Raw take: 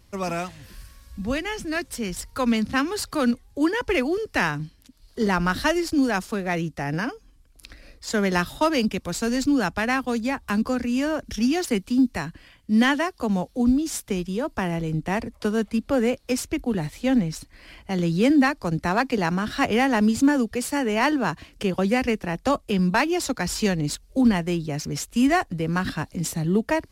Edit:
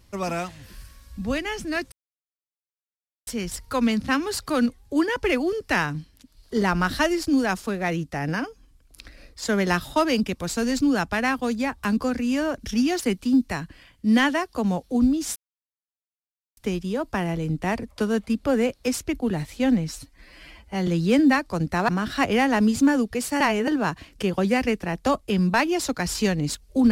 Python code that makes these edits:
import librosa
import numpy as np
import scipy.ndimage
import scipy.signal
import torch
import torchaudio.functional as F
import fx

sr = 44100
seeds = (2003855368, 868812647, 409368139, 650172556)

y = fx.edit(x, sr, fx.insert_silence(at_s=1.92, length_s=1.35),
    fx.insert_silence(at_s=14.01, length_s=1.21),
    fx.stretch_span(start_s=17.34, length_s=0.65, factor=1.5),
    fx.cut(start_s=19.0, length_s=0.29),
    fx.reverse_span(start_s=20.81, length_s=0.27), tone=tone)